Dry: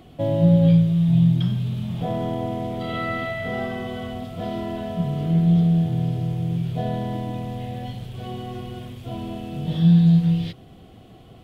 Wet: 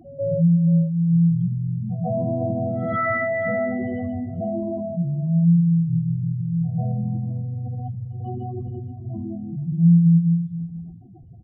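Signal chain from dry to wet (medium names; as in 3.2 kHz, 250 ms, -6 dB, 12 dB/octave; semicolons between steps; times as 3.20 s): spectral contrast enhancement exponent 3.6; on a send: delay 478 ms -14 dB; on the sum: gain riding within 4 dB 2 s; pre-echo 141 ms -17.5 dB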